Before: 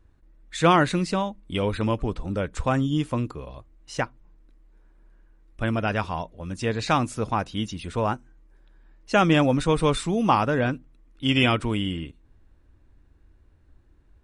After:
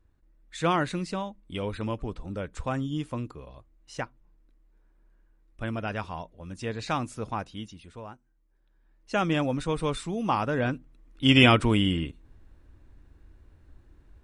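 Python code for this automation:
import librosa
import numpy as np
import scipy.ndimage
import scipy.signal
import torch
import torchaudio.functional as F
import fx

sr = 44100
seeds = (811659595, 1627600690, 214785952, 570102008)

y = fx.gain(x, sr, db=fx.line((7.41, -7.0), (8.14, -19.0), (9.13, -7.0), (10.23, -7.0), (11.32, 3.0)))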